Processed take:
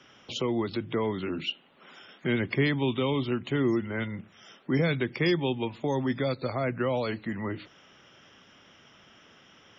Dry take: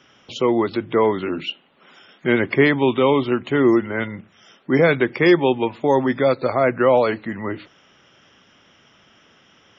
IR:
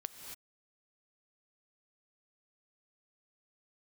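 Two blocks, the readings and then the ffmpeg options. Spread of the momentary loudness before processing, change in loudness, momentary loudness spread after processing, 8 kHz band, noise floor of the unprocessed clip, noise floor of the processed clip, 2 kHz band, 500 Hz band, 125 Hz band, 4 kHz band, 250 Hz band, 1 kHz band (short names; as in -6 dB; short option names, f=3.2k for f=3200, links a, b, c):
12 LU, -10.0 dB, 9 LU, n/a, -55 dBFS, -58 dBFS, -10.5 dB, -12.5 dB, -3.0 dB, -4.5 dB, -9.0 dB, -13.0 dB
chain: -filter_complex "[0:a]acrossover=split=210|3000[a][b][c];[b]acompressor=threshold=-36dB:ratio=2[d];[a][d][c]amix=inputs=3:normalize=0,volume=-2dB"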